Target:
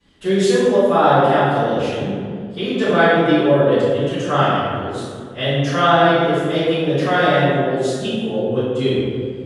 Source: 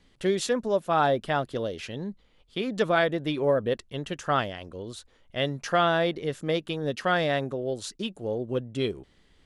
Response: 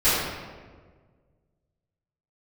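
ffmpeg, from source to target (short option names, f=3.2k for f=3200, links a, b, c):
-filter_complex "[0:a]highpass=64[a];[1:a]atrim=start_sample=2205,asetrate=28665,aresample=44100[b];[a][b]afir=irnorm=-1:irlink=0,volume=-11.5dB"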